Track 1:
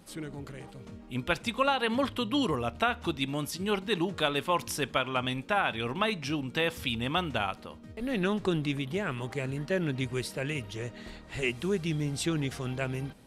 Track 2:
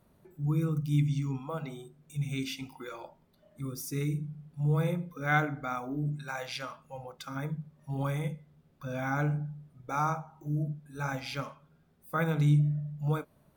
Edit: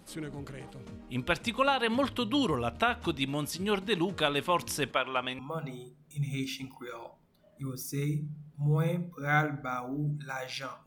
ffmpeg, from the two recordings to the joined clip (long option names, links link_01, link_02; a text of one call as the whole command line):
ffmpeg -i cue0.wav -i cue1.wav -filter_complex "[0:a]asettb=1/sr,asplit=3[link_01][link_02][link_03];[link_01]atrim=end=4.914[link_04];[link_02]atrim=start=4.91:end=5.39,asetpts=PTS-STARTPTS,afade=type=in:duration=0.004:curve=qsin,afade=type=out:start_time=0.476:duration=0.004:curve=qsin,bass=frequency=250:gain=-14,treble=frequency=4000:gain=-7[link_05];[link_03]atrim=start=5.386[link_06];[link_04][link_05]acrossfade=duration=0.004:curve1=hsin:curve2=qsin[link_07];[link_07][link_06]acrossfade=duration=0.004:curve1=qsin:curve2=hsin,apad=whole_dur=10.86,atrim=end=10.86,atrim=end=5.392[link_08];[1:a]atrim=start=1.378:end=6.85[link_09];[link_08][link_09]acrossfade=duration=0.004:curve1=hsin:curve2=hsin" out.wav